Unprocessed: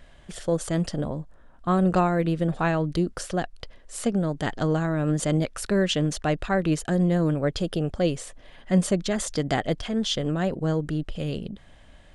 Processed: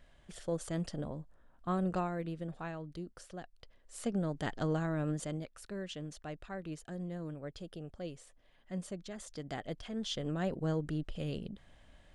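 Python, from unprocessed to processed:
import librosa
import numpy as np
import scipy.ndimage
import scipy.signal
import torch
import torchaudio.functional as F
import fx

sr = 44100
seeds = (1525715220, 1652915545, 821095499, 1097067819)

y = fx.gain(x, sr, db=fx.line((1.7, -11.0), (2.82, -19.0), (3.51, -19.0), (4.18, -9.0), (5.01, -9.0), (5.49, -19.0), (9.18, -19.0), (10.5, -8.5)))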